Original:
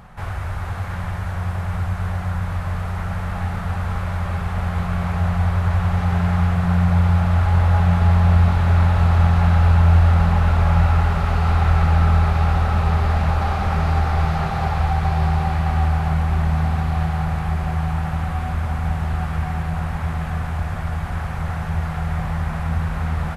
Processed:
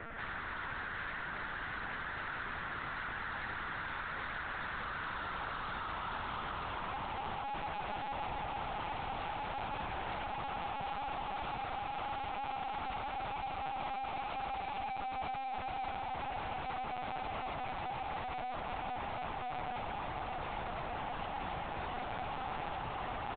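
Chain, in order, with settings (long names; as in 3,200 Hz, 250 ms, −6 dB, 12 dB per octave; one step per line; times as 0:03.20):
low-pass filter 2,400 Hz 24 dB per octave
steady tone 460 Hz −33 dBFS
in parallel at −2 dB: speech leveller within 4 dB 2 s
on the sum: mains-hum notches 50/100/150/200 Hz
dead-zone distortion −35 dBFS
band-pass filter sweep 1,700 Hz → 840 Hz, 0:04.65–0:07.68
tube saturation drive 40 dB, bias 0.3
brickwall limiter −42.5 dBFS, peak gain reduction 4 dB
on a send: single-tap delay 116 ms −12 dB
on the sum: linear-prediction vocoder at 8 kHz pitch kept
level +4.5 dB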